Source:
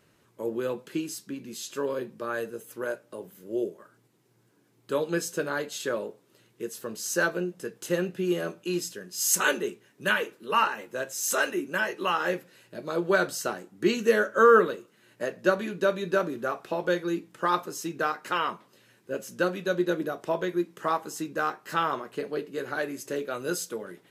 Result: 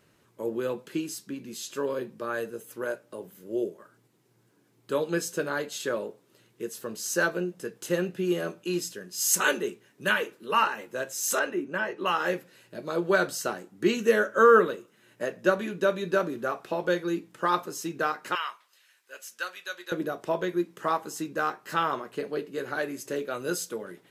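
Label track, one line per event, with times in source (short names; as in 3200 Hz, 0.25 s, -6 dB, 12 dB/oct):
11.390000	12.060000	LPF 1700 Hz 6 dB/oct
13.870000	15.960000	notch 4400 Hz
18.350000	19.920000	HPF 1400 Hz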